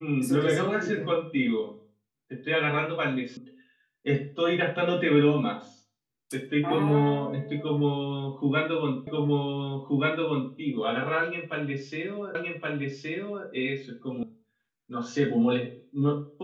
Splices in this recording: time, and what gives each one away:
3.37 s: sound stops dead
9.07 s: repeat of the last 1.48 s
12.35 s: repeat of the last 1.12 s
14.23 s: sound stops dead

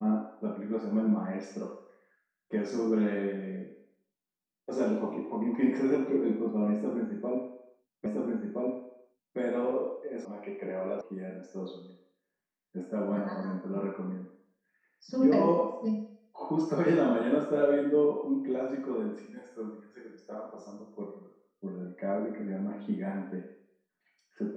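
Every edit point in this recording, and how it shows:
8.06 s: repeat of the last 1.32 s
10.25 s: sound stops dead
11.01 s: sound stops dead

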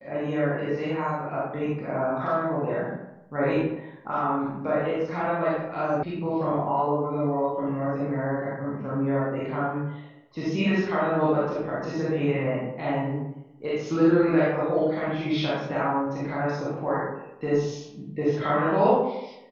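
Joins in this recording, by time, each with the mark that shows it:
6.03 s: sound stops dead

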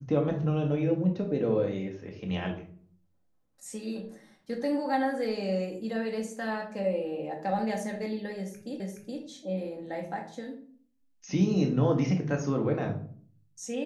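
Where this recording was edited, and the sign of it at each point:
8.80 s: repeat of the last 0.42 s

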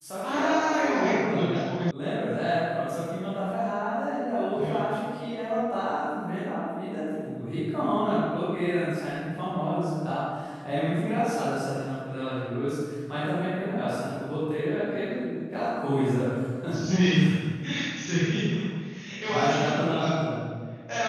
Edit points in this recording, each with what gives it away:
1.91 s: sound stops dead

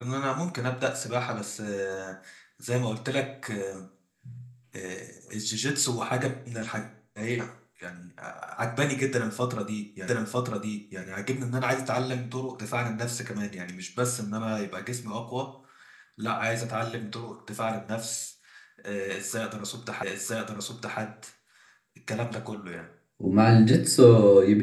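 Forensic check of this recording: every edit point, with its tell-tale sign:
10.08 s: repeat of the last 0.95 s
20.03 s: repeat of the last 0.96 s

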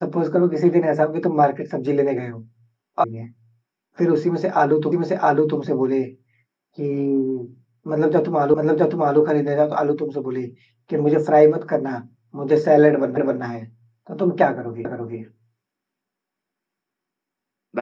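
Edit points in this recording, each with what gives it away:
3.04 s: sound stops dead
4.92 s: repeat of the last 0.67 s
8.54 s: repeat of the last 0.66 s
13.17 s: repeat of the last 0.26 s
14.85 s: repeat of the last 0.34 s

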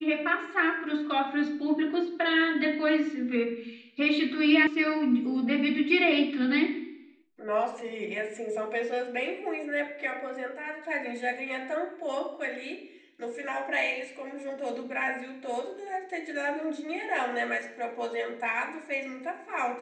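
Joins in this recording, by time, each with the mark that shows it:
4.67 s: sound stops dead

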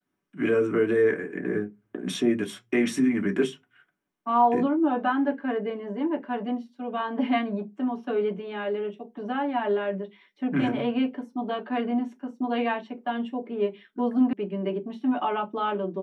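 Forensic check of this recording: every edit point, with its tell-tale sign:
14.33 s: sound stops dead

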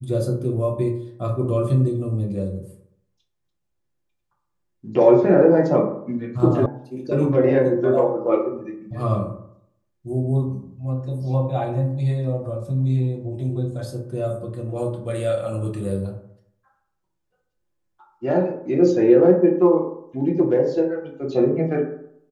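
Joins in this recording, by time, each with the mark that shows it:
6.66 s: sound stops dead

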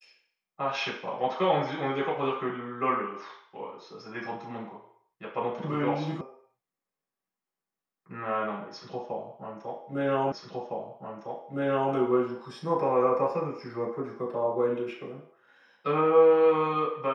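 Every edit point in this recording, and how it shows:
6.21 s: sound stops dead
10.32 s: repeat of the last 1.61 s

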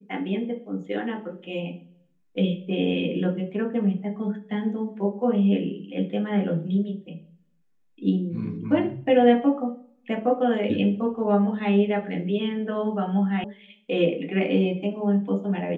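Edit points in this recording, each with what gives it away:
13.44 s: sound stops dead

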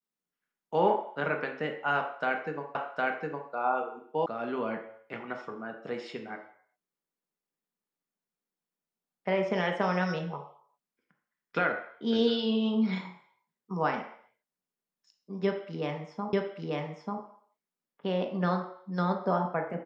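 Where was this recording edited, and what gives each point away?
2.75 s: repeat of the last 0.76 s
4.26 s: sound stops dead
16.33 s: repeat of the last 0.89 s

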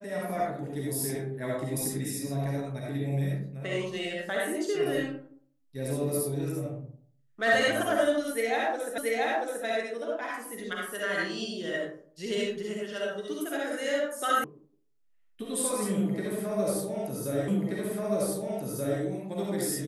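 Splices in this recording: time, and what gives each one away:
8.98 s: repeat of the last 0.68 s
14.44 s: sound stops dead
17.48 s: repeat of the last 1.53 s

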